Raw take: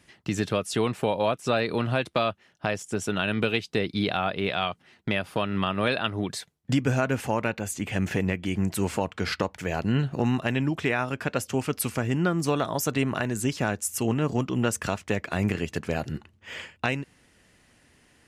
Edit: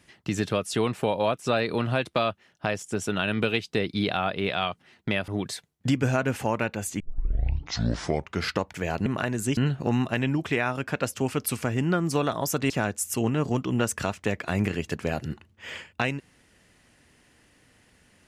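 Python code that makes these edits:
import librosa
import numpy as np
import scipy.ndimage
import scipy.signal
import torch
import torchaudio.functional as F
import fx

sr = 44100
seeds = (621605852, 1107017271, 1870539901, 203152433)

y = fx.edit(x, sr, fx.cut(start_s=5.28, length_s=0.84),
    fx.tape_start(start_s=7.84, length_s=1.46),
    fx.move(start_s=13.03, length_s=0.51, to_s=9.9), tone=tone)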